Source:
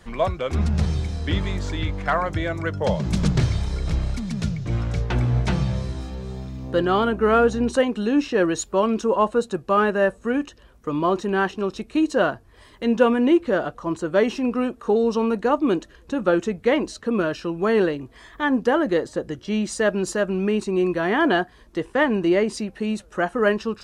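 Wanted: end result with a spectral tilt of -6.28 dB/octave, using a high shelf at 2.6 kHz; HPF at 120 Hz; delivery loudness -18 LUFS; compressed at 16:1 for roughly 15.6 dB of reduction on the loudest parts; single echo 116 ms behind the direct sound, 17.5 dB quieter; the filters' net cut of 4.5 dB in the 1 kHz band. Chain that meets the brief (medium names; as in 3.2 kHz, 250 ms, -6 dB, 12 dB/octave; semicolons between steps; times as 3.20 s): high-pass 120 Hz; peaking EQ 1 kHz -5 dB; treble shelf 2.6 kHz -6.5 dB; compression 16:1, threshold -28 dBFS; delay 116 ms -17.5 dB; trim +15.5 dB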